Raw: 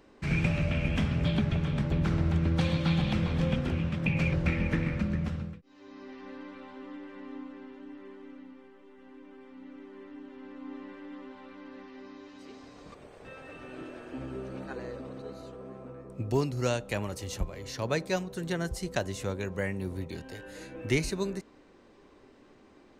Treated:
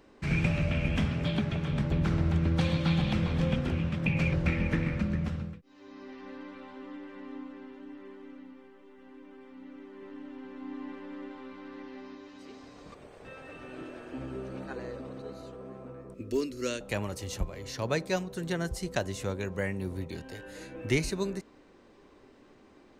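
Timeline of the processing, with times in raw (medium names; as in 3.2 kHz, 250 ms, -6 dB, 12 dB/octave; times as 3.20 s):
1.11–1.69 s: bass shelf 86 Hz -10.5 dB
9.84–12.15 s: delay 184 ms -4 dB
16.14–16.81 s: static phaser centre 330 Hz, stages 4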